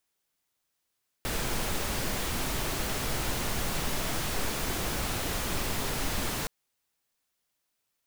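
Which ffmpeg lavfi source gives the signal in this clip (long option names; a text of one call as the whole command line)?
ffmpeg -f lavfi -i "anoisesrc=color=pink:amplitude=0.153:duration=5.22:sample_rate=44100:seed=1" out.wav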